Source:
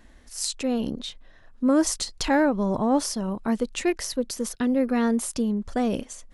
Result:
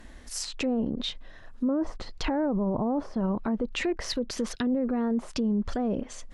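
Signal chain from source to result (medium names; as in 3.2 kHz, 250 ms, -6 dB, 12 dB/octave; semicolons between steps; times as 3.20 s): low-pass that closes with the level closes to 930 Hz, closed at -22 dBFS; 3.60–6.01 s: treble shelf 2.7 kHz +11 dB; peak limiter -25 dBFS, peak gain reduction 13.5 dB; trim +5 dB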